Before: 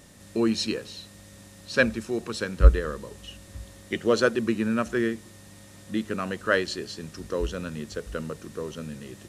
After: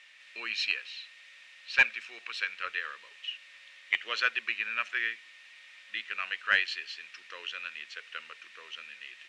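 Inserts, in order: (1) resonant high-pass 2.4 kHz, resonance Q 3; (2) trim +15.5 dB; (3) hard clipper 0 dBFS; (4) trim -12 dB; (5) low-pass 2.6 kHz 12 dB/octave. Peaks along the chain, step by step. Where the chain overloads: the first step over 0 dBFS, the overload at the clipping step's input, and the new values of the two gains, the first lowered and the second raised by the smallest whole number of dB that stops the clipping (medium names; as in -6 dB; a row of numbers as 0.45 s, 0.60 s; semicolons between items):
-6.5 dBFS, +9.0 dBFS, 0.0 dBFS, -12.0 dBFS, -11.5 dBFS; step 2, 9.0 dB; step 2 +6.5 dB, step 4 -3 dB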